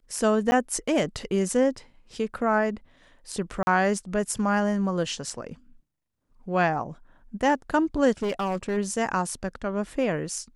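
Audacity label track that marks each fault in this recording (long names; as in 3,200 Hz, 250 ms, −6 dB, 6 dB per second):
0.510000	0.520000	drop-out 10 ms
3.630000	3.670000	drop-out 41 ms
8.220000	8.780000	clipping −23 dBFS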